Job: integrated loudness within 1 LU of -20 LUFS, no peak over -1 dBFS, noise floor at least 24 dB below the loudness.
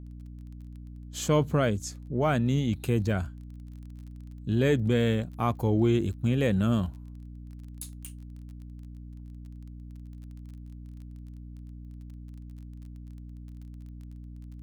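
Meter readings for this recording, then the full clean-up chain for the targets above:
ticks 26/s; hum 60 Hz; harmonics up to 300 Hz; hum level -41 dBFS; loudness -27.5 LUFS; peak -12.0 dBFS; loudness target -20.0 LUFS
-> de-click; de-hum 60 Hz, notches 5; gain +7.5 dB

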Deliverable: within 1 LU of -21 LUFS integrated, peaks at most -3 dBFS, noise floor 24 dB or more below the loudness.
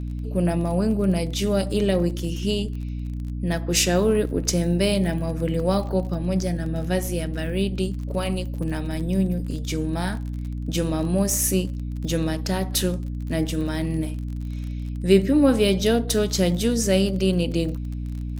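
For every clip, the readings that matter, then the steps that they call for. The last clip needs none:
ticks 32/s; hum 60 Hz; harmonics up to 300 Hz; hum level -27 dBFS; loudness -23.5 LUFS; peak -3.0 dBFS; loudness target -21.0 LUFS
-> de-click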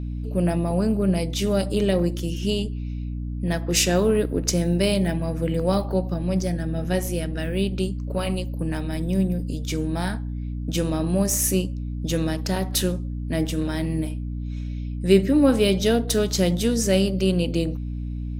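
ticks 0.054/s; hum 60 Hz; harmonics up to 300 Hz; hum level -27 dBFS
-> de-hum 60 Hz, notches 5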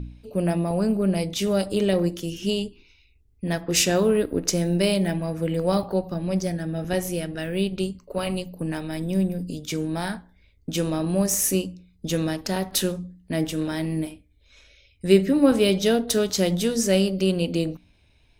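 hum none; loudness -24.0 LUFS; peak -4.0 dBFS; loudness target -21.0 LUFS
-> gain +3 dB; limiter -3 dBFS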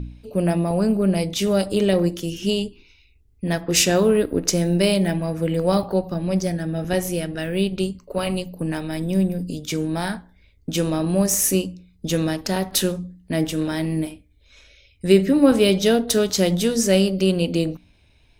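loudness -21.5 LUFS; peak -3.0 dBFS; noise floor -57 dBFS

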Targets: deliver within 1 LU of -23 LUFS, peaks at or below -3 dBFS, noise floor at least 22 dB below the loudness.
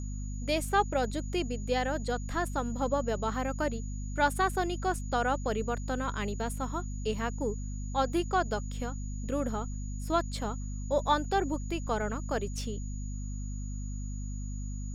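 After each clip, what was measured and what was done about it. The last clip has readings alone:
hum 50 Hz; harmonics up to 250 Hz; hum level -34 dBFS; steady tone 6800 Hz; tone level -50 dBFS; loudness -32.5 LUFS; peak -12.5 dBFS; loudness target -23.0 LUFS
-> de-hum 50 Hz, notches 5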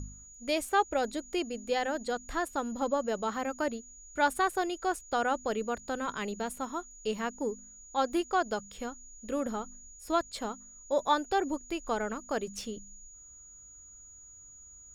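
hum none; steady tone 6800 Hz; tone level -50 dBFS
-> notch 6800 Hz, Q 30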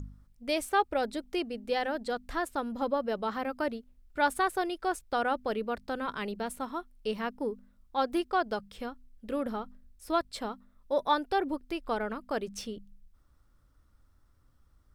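steady tone none; loudness -32.5 LUFS; peak -13.0 dBFS; loudness target -23.0 LUFS
-> gain +9.5 dB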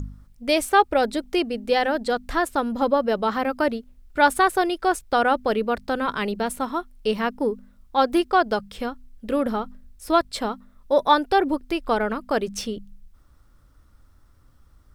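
loudness -23.0 LUFS; peak -3.5 dBFS; noise floor -55 dBFS

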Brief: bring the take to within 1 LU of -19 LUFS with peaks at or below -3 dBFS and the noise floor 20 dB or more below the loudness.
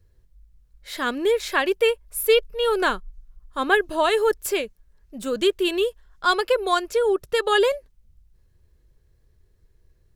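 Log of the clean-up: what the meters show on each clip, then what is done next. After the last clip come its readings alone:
loudness -22.5 LUFS; peak -5.5 dBFS; loudness target -19.0 LUFS
-> gain +3.5 dB; limiter -3 dBFS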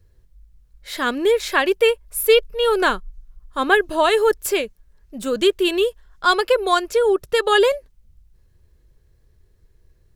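loudness -19.0 LUFS; peak -3.0 dBFS; noise floor -57 dBFS

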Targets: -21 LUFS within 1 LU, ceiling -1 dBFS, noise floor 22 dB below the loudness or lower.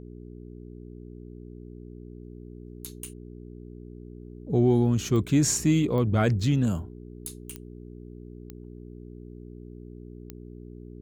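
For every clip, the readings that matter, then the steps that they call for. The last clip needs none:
clicks 5; hum 60 Hz; harmonics up to 420 Hz; hum level -39 dBFS; loudness -24.0 LUFS; peak -10.5 dBFS; loudness target -21.0 LUFS
-> de-click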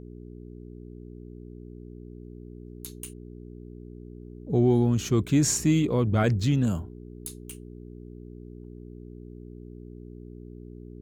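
clicks 0; hum 60 Hz; harmonics up to 420 Hz; hum level -39 dBFS
-> de-hum 60 Hz, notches 7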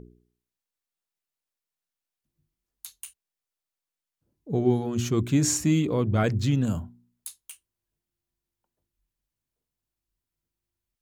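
hum none; loudness -25.0 LUFS; peak -10.5 dBFS; loudness target -21.0 LUFS
-> gain +4 dB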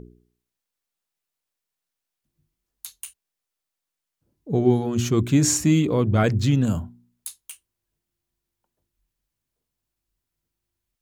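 loudness -21.0 LUFS; peak -6.5 dBFS; noise floor -85 dBFS

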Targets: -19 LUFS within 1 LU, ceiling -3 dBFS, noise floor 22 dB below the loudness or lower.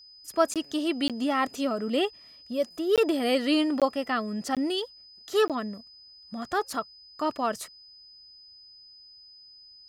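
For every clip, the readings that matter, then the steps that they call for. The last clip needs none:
dropouts 6; longest dropout 17 ms; steady tone 5000 Hz; tone level -49 dBFS; loudness -28.0 LUFS; peak -9.5 dBFS; loudness target -19.0 LUFS
-> interpolate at 0.54/1.08/2.96/3.8/4.55/5.48, 17 ms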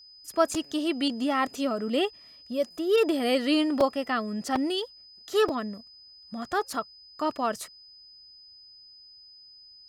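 dropouts 0; steady tone 5000 Hz; tone level -49 dBFS
-> notch 5000 Hz, Q 30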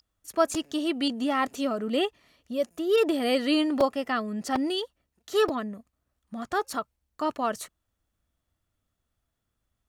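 steady tone none; loudness -27.5 LUFS; peak -9.5 dBFS; loudness target -19.0 LUFS
-> gain +8.5 dB; limiter -3 dBFS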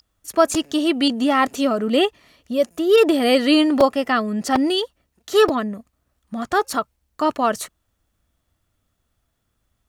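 loudness -19.0 LUFS; peak -3.0 dBFS; noise floor -73 dBFS

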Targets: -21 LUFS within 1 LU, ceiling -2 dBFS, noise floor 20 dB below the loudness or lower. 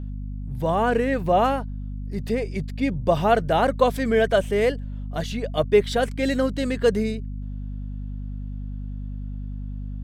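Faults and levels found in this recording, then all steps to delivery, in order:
hum 50 Hz; harmonics up to 250 Hz; hum level -29 dBFS; loudness -23.0 LUFS; peak -5.0 dBFS; loudness target -21.0 LUFS
-> notches 50/100/150/200/250 Hz; gain +2 dB

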